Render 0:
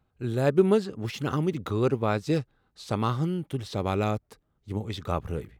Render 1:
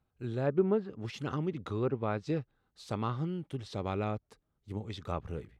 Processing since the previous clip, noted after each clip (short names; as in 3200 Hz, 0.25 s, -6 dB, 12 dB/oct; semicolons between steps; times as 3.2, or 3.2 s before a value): treble ducked by the level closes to 1600 Hz, closed at -18.5 dBFS; gain -7 dB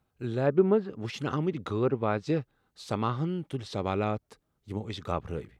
low shelf 98 Hz -6.5 dB; gain +5.5 dB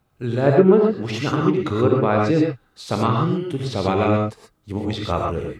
non-linear reverb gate 0.15 s rising, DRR 0 dB; gain +7.5 dB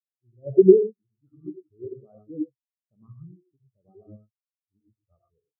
spectral expander 4:1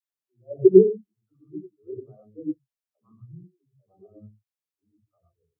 dispersion lows, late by 0.14 s, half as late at 360 Hz